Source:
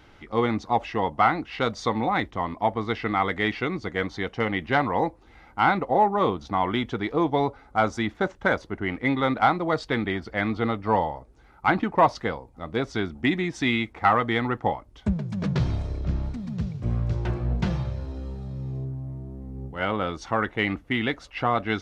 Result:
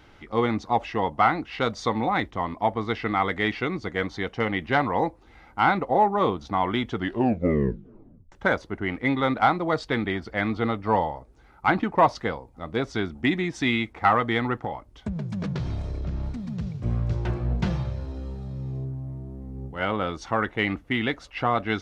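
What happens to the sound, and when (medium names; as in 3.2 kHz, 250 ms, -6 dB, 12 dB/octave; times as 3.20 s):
6.90 s: tape stop 1.42 s
14.62–16.77 s: compression 5:1, threshold -25 dBFS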